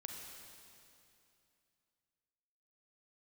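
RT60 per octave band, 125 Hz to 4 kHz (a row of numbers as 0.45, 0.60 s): 3.0, 2.9, 2.7, 2.6, 2.6, 2.5 s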